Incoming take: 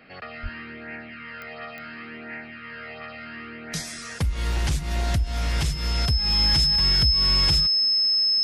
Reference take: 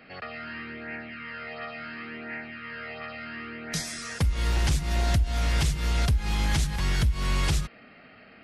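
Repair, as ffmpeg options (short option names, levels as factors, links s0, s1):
-filter_complex "[0:a]adeclick=t=4,bandreject=f=5200:w=30,asplit=3[s0][s1][s2];[s0]afade=t=out:st=0.42:d=0.02[s3];[s1]highpass=f=140:w=0.5412,highpass=f=140:w=1.3066,afade=t=in:st=0.42:d=0.02,afade=t=out:st=0.54:d=0.02[s4];[s2]afade=t=in:st=0.54:d=0.02[s5];[s3][s4][s5]amix=inputs=3:normalize=0"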